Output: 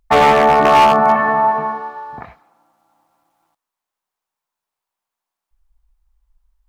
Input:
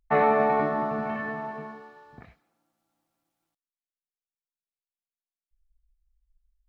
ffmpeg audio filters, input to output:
ffmpeg -i in.wav -af "asetnsamples=nb_out_samples=441:pad=0,asendcmd='0.65 equalizer g 15',equalizer=frequency=940:width_type=o:width=1.2:gain=5,aeval=exprs='0.211*(abs(mod(val(0)/0.211+3,4)-2)-1)':channel_layout=same,volume=9dB" out.wav

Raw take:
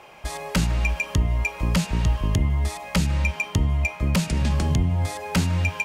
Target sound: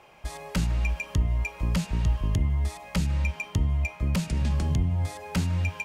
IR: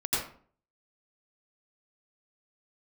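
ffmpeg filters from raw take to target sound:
-af "lowshelf=frequency=170:gain=5.5,volume=-7.5dB"

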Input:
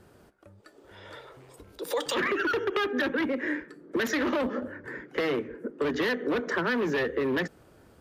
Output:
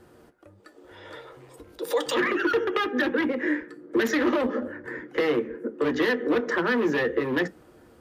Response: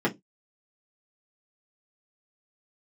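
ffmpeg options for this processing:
-filter_complex "[0:a]asplit=2[link_01][link_02];[1:a]atrim=start_sample=2205,lowshelf=frequency=380:gain=-5[link_03];[link_02][link_03]afir=irnorm=-1:irlink=0,volume=-16.5dB[link_04];[link_01][link_04]amix=inputs=2:normalize=0"

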